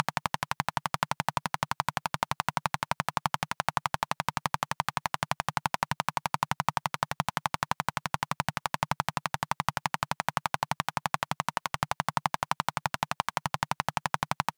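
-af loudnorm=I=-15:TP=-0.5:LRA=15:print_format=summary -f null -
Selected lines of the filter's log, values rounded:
Input Integrated:    -31.7 LUFS
Input True Peak:      -5.1 dBTP
Input LRA:             0.3 LU
Input Threshold:     -41.7 LUFS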